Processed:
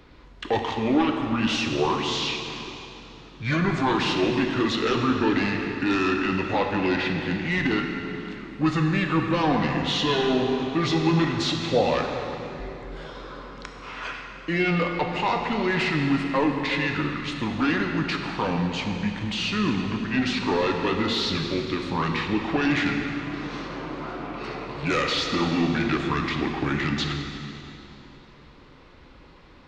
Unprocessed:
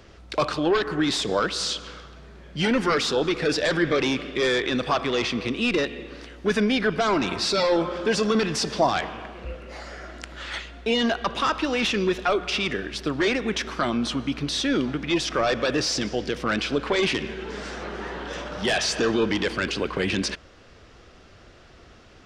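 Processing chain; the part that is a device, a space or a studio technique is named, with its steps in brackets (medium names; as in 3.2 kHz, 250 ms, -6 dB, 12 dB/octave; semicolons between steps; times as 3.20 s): slowed and reverbed (tape speed -25%; reverberation RT60 3.0 s, pre-delay 4 ms, DRR 2.5 dB); trim -2 dB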